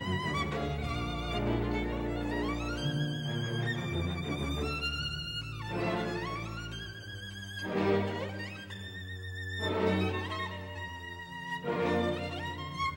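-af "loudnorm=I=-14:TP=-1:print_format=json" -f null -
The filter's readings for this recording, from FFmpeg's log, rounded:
"input_i" : "-34.5",
"input_tp" : "-16.5",
"input_lra" : "1.7",
"input_thresh" : "-44.5",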